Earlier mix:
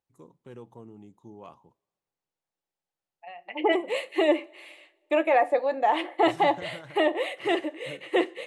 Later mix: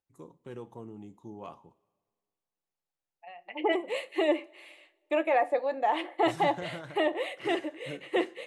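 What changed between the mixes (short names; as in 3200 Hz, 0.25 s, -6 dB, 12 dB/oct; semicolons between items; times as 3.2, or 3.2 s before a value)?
first voice: send +11.0 dB; second voice -4.0 dB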